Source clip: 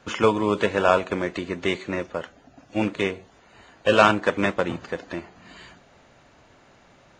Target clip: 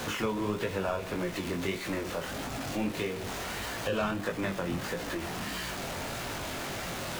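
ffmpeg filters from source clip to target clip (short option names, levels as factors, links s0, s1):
-filter_complex "[0:a]aeval=exprs='val(0)+0.5*0.0631*sgn(val(0))':c=same,flanger=delay=17:depth=6.6:speed=1.6,acrossover=split=190[s0][s1];[s1]acompressor=threshold=0.0316:ratio=2.5[s2];[s0][s2]amix=inputs=2:normalize=0,volume=0.708"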